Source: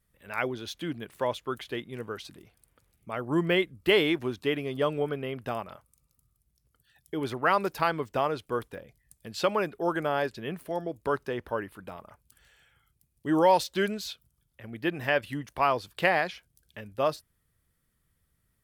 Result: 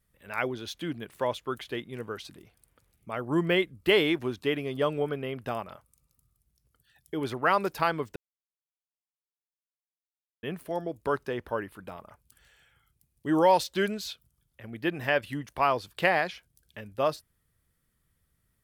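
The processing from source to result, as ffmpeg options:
-filter_complex "[0:a]asplit=3[a][b][c];[a]atrim=end=8.16,asetpts=PTS-STARTPTS,afade=t=out:st=8.156:d=0.004:c=hsin[d];[b]atrim=start=8.16:end=10.43,asetpts=PTS-STARTPTS,volume=0[e];[c]atrim=start=10.43,asetpts=PTS-STARTPTS,afade=t=in:d=0.004:c=hsin[f];[d][e][f]concat=n=3:v=0:a=1"

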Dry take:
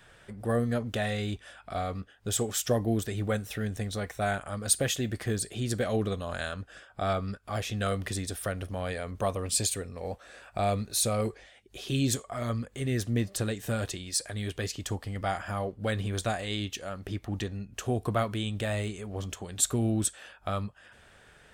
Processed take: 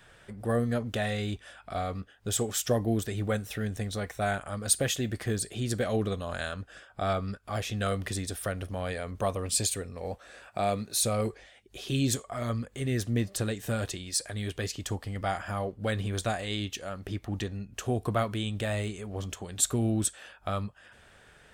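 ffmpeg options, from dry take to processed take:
-filter_complex "[0:a]asettb=1/sr,asplit=3[a][b][c];[a]atrim=end=10.494[d];[b]atrim=start=10.49:end=11.01,asetpts=PTS-STARTPTS,afade=t=in:d=0.004:c=qsin,afade=t=out:st=0.516:d=0.004:c=qsin,highpass=130[e];[c]atrim=start=11.006[f];[d][e]acrossfade=d=0.004:c1=hsin:c2=qsin[g];[g][f]acrossfade=d=0.004:c1=qsin:c2=hsin"

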